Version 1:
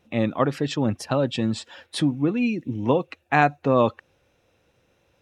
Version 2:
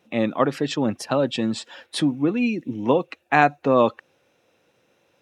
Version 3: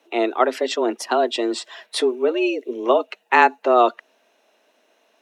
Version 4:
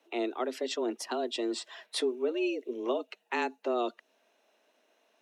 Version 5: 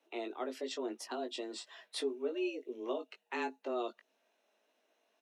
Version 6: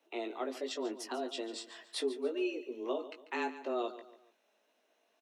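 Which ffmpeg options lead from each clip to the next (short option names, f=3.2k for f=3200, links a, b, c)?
-af "highpass=180,volume=2dB"
-af "afreqshift=120,lowshelf=f=190:g=-9,volume=3dB"
-filter_complex "[0:a]acrossover=split=430|3000[a][b][c];[b]acompressor=threshold=-32dB:ratio=2.5[d];[a][d][c]amix=inputs=3:normalize=0,volume=-8dB"
-filter_complex "[0:a]asplit=2[a][b];[b]adelay=19,volume=-6dB[c];[a][c]amix=inputs=2:normalize=0,volume=-7.5dB"
-af "aecho=1:1:143|286|429:0.2|0.0718|0.0259,volume=1.5dB"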